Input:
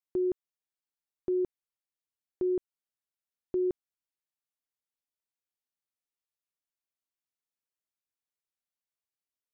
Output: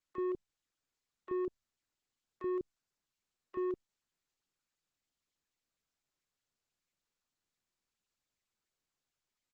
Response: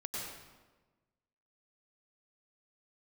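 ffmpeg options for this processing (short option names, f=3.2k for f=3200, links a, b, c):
-filter_complex "[0:a]asoftclip=type=tanh:threshold=-32dB,acrossover=split=540[a][b];[a]adelay=30[c];[c][b]amix=inputs=2:normalize=0" -ar 48000 -c:a libopus -b:a 12k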